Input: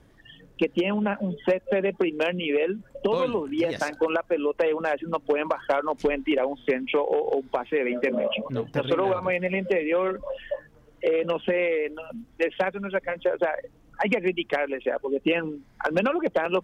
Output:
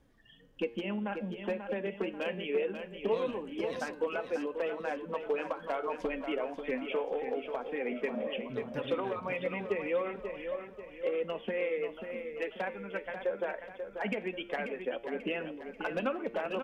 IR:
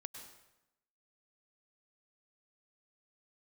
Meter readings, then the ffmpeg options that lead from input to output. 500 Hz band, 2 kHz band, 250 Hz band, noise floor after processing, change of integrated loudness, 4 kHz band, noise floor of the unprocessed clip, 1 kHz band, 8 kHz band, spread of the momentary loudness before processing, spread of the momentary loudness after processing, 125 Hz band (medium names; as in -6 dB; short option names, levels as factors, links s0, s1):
-9.0 dB, -9.5 dB, -10.0 dB, -52 dBFS, -9.5 dB, -9.5 dB, -56 dBFS, -9.5 dB, no reading, 5 LU, 5 LU, -10.5 dB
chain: -filter_complex "[0:a]flanger=delay=3.6:depth=1.2:regen=52:speed=1.8:shape=triangular,bandreject=f=116.4:t=h:w=4,bandreject=f=232.8:t=h:w=4,bandreject=f=349.2:t=h:w=4,bandreject=f=465.6:t=h:w=4,bandreject=f=582:t=h:w=4,bandreject=f=698.4:t=h:w=4,bandreject=f=814.8:t=h:w=4,bandreject=f=931.2:t=h:w=4,bandreject=f=1047.6:t=h:w=4,bandreject=f=1164:t=h:w=4,bandreject=f=1280.4:t=h:w=4,bandreject=f=1396.8:t=h:w=4,bandreject=f=1513.2:t=h:w=4,bandreject=f=1629.6:t=h:w=4,bandreject=f=1746:t=h:w=4,bandreject=f=1862.4:t=h:w=4,bandreject=f=1978.8:t=h:w=4,bandreject=f=2095.2:t=h:w=4,bandreject=f=2211.6:t=h:w=4,bandreject=f=2328:t=h:w=4,bandreject=f=2444.4:t=h:w=4,bandreject=f=2560.8:t=h:w=4,bandreject=f=2677.2:t=h:w=4,bandreject=f=2793.6:t=h:w=4,bandreject=f=2910:t=h:w=4,bandreject=f=3026.4:t=h:w=4,bandreject=f=3142.8:t=h:w=4,bandreject=f=3259.2:t=h:w=4,bandreject=f=3375.6:t=h:w=4,bandreject=f=3492:t=h:w=4,bandreject=f=3608.4:t=h:w=4,bandreject=f=3724.8:t=h:w=4,bandreject=f=3841.2:t=h:w=4,bandreject=f=3957.6:t=h:w=4,bandreject=f=4074:t=h:w=4,bandreject=f=4190.4:t=h:w=4,bandreject=f=4306.8:t=h:w=4,bandreject=f=4423.2:t=h:w=4,bandreject=f=4539.6:t=h:w=4,asplit=2[s0][s1];[s1]aecho=0:1:538|1076|1614|2152|2690:0.398|0.183|0.0842|0.0388|0.0178[s2];[s0][s2]amix=inputs=2:normalize=0,volume=0.501"